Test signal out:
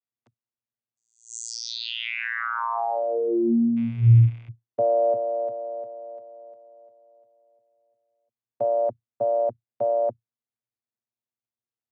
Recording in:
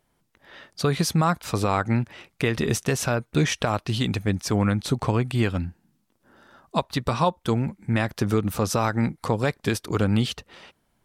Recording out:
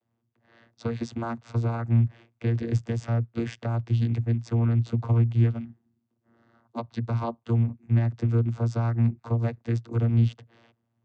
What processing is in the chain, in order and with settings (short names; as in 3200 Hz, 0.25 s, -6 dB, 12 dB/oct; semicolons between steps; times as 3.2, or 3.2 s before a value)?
rattling part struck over -23 dBFS, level -28 dBFS; vocoder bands 16, saw 116 Hz